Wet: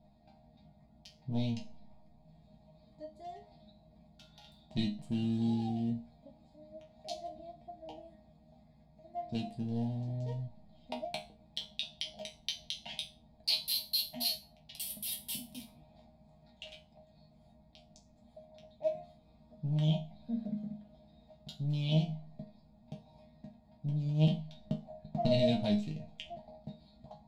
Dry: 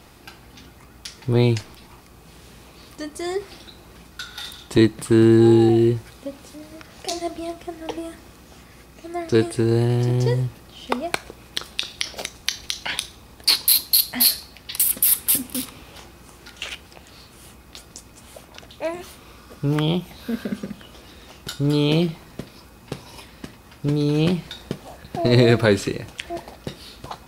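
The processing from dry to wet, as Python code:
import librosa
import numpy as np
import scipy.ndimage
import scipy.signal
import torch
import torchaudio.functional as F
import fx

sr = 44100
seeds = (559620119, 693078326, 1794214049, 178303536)

y = fx.wiener(x, sr, points=15)
y = fx.curve_eq(y, sr, hz=(210.0, 450.0, 640.0, 910.0, 1300.0, 3100.0, 10000.0), db=(0, -22, 3, -9, -28, 1, -12))
y = fx.transient(y, sr, attack_db=7, sustain_db=-1, at=(24.02, 25.33))
y = fx.resonator_bank(y, sr, root=51, chord='sus4', decay_s=0.3)
y = y * 10.0 ** (6.0 / 20.0)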